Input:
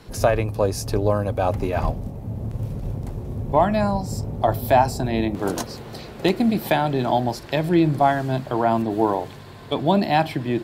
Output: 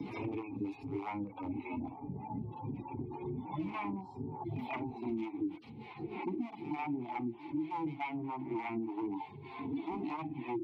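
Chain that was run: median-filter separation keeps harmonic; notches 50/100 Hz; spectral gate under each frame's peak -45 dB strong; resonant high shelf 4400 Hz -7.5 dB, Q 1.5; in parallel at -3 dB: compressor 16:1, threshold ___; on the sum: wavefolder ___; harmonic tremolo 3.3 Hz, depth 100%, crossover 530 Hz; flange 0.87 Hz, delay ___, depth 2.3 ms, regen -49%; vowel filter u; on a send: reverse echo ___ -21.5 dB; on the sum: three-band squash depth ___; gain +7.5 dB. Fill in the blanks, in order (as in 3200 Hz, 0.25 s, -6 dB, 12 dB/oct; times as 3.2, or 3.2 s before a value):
-34 dBFS, -18 dBFS, 1.2 ms, 0.144 s, 100%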